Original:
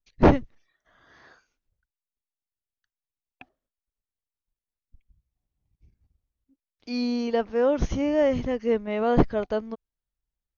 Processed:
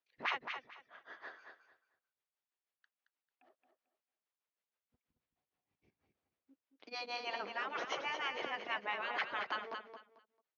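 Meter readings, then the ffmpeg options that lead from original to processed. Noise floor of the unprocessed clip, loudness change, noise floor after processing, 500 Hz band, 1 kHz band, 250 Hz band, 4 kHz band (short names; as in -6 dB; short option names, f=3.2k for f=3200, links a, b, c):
under -85 dBFS, -15.0 dB, under -85 dBFS, -22.5 dB, -8.5 dB, -31.0 dB, -1.5 dB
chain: -filter_complex "[0:a]tremolo=f=6.3:d=0.98,afftfilt=real='re*lt(hypot(re,im),0.0562)':imag='im*lt(hypot(re,im),0.0562)':win_size=1024:overlap=0.75,highpass=450,lowpass=3k,asplit=2[a][b];[b]aecho=0:1:222|444|666:0.447|0.0983|0.0216[c];[a][c]amix=inputs=2:normalize=0,volume=7.5dB"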